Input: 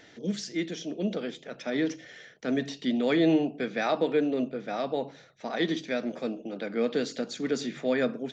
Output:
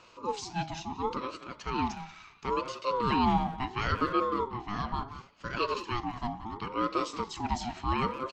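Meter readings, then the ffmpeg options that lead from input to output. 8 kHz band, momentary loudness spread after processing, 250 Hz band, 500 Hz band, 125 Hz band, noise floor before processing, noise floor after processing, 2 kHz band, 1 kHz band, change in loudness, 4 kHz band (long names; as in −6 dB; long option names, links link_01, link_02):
can't be measured, 10 LU, −6.5 dB, −7.0 dB, +2.5 dB, −54 dBFS, −56 dBFS, −3.0 dB, +8.5 dB, −2.5 dB, −2.5 dB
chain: -filter_complex "[0:a]asplit=2[link_01][link_02];[link_02]adelay=180,highpass=300,lowpass=3400,asoftclip=type=hard:threshold=-23.5dB,volume=-10dB[link_03];[link_01][link_03]amix=inputs=2:normalize=0,aeval=exprs='val(0)*sin(2*PI*640*n/s+640*0.25/0.72*sin(2*PI*0.72*n/s))':channel_layout=same"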